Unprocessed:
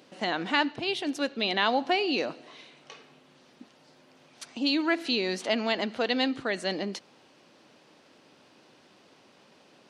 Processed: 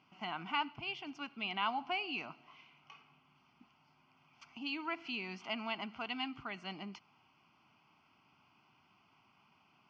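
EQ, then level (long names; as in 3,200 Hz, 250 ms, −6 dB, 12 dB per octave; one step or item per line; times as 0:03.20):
high-frequency loss of the air 280 metres
parametric band 310 Hz −10 dB 1.8 octaves
phaser with its sweep stopped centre 2,600 Hz, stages 8
−2.0 dB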